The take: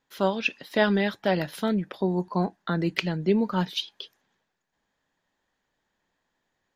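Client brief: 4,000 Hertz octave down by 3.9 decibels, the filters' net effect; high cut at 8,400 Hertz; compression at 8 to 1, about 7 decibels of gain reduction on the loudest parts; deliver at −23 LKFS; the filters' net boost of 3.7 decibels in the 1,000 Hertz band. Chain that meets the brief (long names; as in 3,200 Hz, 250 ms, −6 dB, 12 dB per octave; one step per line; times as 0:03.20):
low-pass filter 8,400 Hz
parametric band 1,000 Hz +5 dB
parametric band 4,000 Hz −5.5 dB
downward compressor 8 to 1, threshold −23 dBFS
level +7 dB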